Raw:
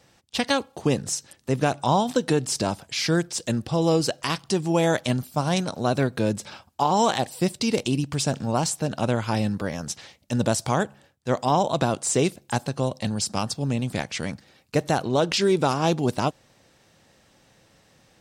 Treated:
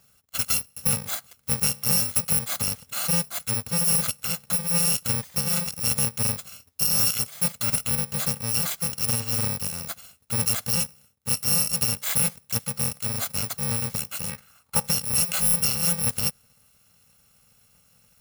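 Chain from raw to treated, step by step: FFT order left unsorted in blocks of 128 samples; 14.29–14.85 bell 2200 Hz -> 720 Hz +11.5 dB 1.2 oct; gain -1.5 dB

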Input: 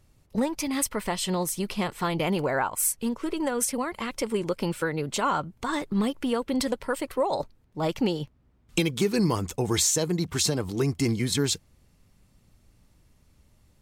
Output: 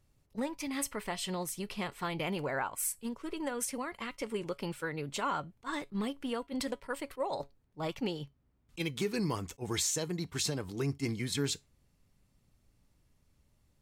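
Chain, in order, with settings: resonator 140 Hz, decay 0.2 s, harmonics all, mix 40%; dynamic EQ 2200 Hz, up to +4 dB, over -45 dBFS, Q 0.9; attack slew limiter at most 510 dB/s; gain -6 dB

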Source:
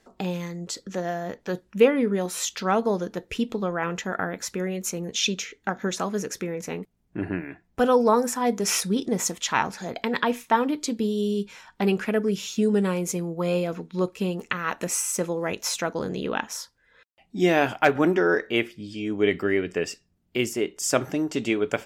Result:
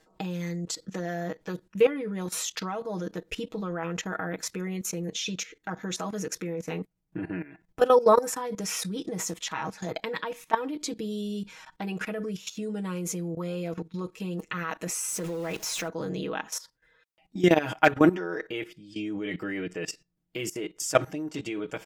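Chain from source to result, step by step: 15.08–15.88 zero-crossing step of -32.5 dBFS; comb 6.3 ms, depth 79%; level quantiser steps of 16 dB

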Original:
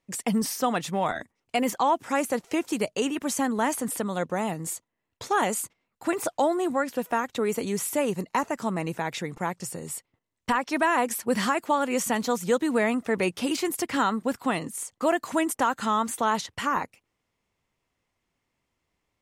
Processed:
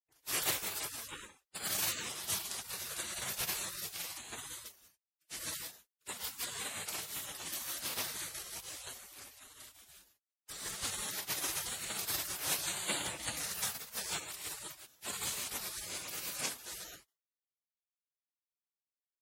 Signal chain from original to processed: non-linear reverb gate 0.2 s rising, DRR -2.5 dB; spectral gate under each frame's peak -25 dB weak; HPF 49 Hz; spectral gate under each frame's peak -10 dB weak; three-band expander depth 70%; gain +6.5 dB

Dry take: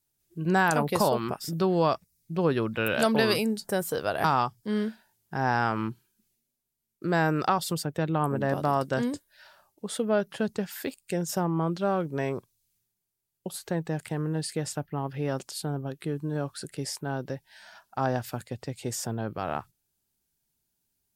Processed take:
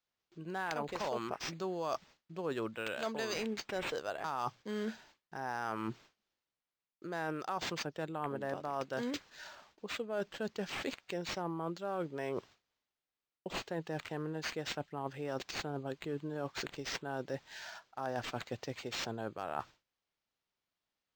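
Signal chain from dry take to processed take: gate with hold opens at -56 dBFS; tone controls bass -10 dB, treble +7 dB; reverse; compressor 5:1, threshold -39 dBFS, peak gain reduction 18.5 dB; reverse; decimation joined by straight lines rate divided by 4×; gain +3.5 dB

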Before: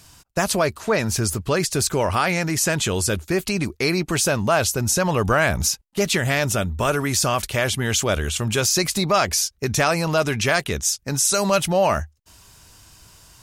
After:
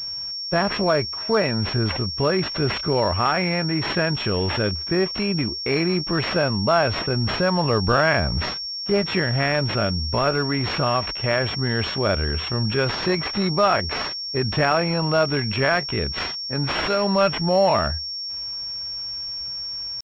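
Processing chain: tempo 0.67×; pulse-width modulation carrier 5500 Hz

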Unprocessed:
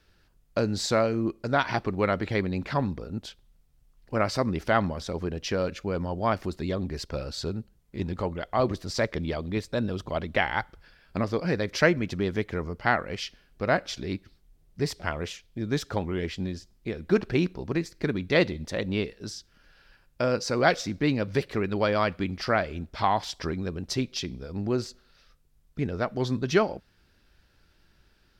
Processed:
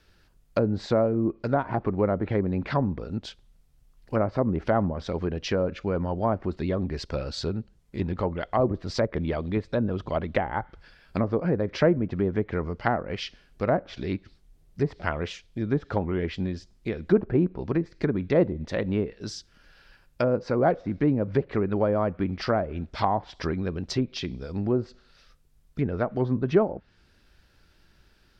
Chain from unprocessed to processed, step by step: treble ducked by the level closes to 780 Hz, closed at -22 dBFS; gain +2.5 dB

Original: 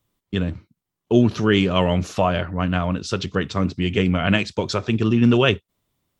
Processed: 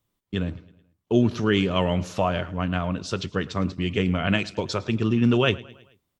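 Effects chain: feedback echo 0.108 s, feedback 52%, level -21 dB; gain -4 dB

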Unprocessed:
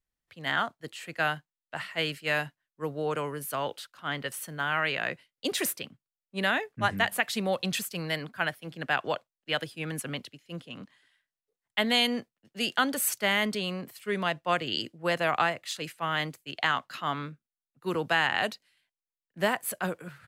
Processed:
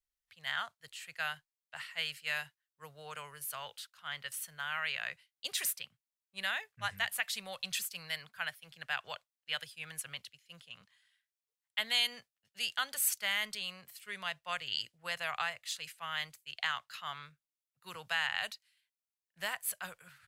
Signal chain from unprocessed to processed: passive tone stack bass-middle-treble 10-0-10; gain -2 dB

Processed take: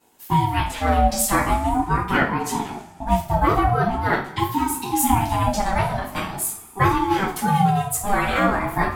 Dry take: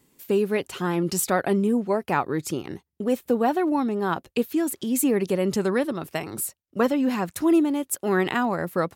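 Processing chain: two-slope reverb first 0.37 s, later 1.7 s, from -19 dB, DRR -10 dB; ring modulator with a swept carrier 500 Hz, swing 20%, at 0.43 Hz; gain -2.5 dB

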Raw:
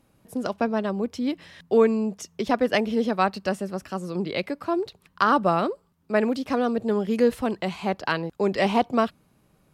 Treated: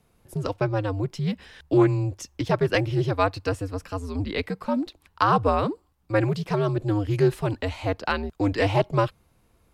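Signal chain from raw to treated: frequency shift -99 Hz; Doppler distortion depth 0.13 ms

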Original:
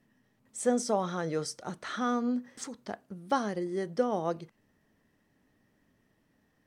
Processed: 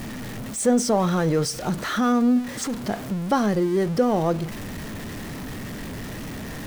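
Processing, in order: zero-crossing step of -38.5 dBFS; low shelf 250 Hz +8 dB; in parallel at -0.5 dB: limiter -22 dBFS, peak gain reduction 9.5 dB; on the sum: gain +1.5 dB

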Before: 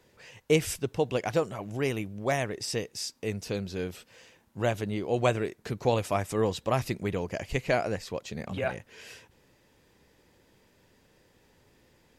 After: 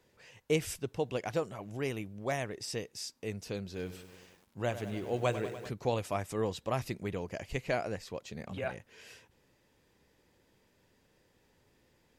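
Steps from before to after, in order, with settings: 3.64–5.69 lo-fi delay 98 ms, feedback 80%, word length 8-bit, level -12 dB; gain -6 dB

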